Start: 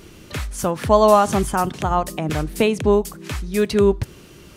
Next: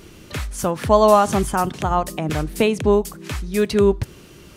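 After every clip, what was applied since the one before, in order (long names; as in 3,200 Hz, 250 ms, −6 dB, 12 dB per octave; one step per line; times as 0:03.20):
no processing that can be heard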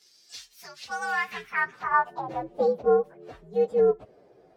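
partials spread apart or drawn together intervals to 123%
band-pass filter sweep 5,200 Hz → 630 Hz, 0:00.73–0:02.43
level +2.5 dB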